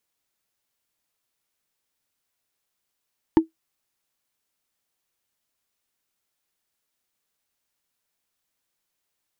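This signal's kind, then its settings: wood hit, lowest mode 323 Hz, decay 0.13 s, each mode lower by 9 dB, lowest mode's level -6.5 dB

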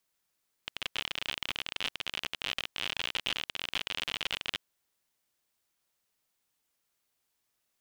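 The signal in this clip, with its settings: random clicks 55/s -16.5 dBFS 3.91 s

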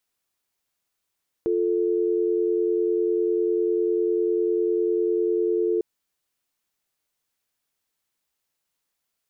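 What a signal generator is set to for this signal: call progress tone dial tone, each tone -22.5 dBFS 4.35 s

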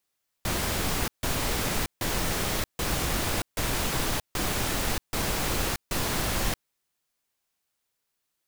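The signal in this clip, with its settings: noise bursts pink, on 0.63 s, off 0.15 s, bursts 8, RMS -27.5 dBFS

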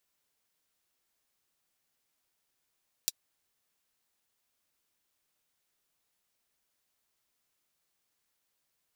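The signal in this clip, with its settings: closed hi-hat, high-pass 4300 Hz, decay 0.04 s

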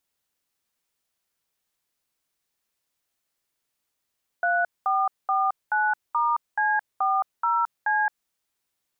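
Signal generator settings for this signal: DTMF "3449*C40C", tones 0.219 s, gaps 0.21 s, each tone -22.5 dBFS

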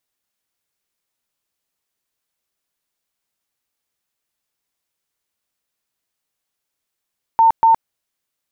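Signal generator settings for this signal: tone bursts 905 Hz, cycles 105, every 0.24 s, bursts 2, -8 dBFS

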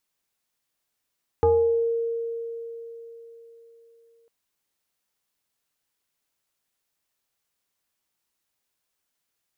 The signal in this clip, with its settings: FM tone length 2.85 s, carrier 462 Hz, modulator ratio 0.82, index 0.92, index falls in 0.70 s exponential, decay 3.93 s, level -14.5 dB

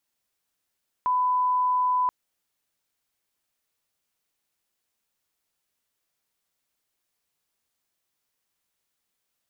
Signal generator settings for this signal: line-up tone -20 dBFS 1.03 s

